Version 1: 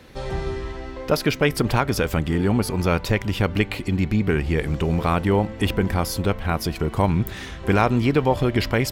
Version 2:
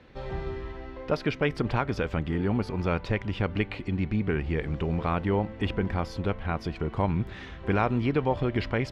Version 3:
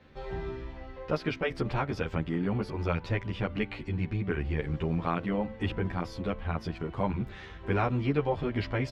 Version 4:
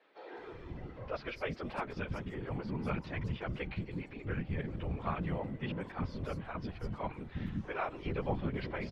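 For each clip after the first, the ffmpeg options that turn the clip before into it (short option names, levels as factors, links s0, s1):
-af "lowpass=3300,volume=0.473"
-filter_complex "[0:a]asplit=2[s0][s1];[s1]adelay=11.2,afreqshift=1.1[s2];[s0][s2]amix=inputs=2:normalize=1"
-filter_complex "[0:a]afftfilt=real='hypot(re,im)*cos(2*PI*random(0))':imag='hypot(re,im)*sin(2*PI*random(1))':win_size=512:overlap=0.75,acrossover=split=340|5400[s0][s1][s2];[s2]adelay=200[s3];[s0]adelay=370[s4];[s4][s1][s3]amix=inputs=3:normalize=0"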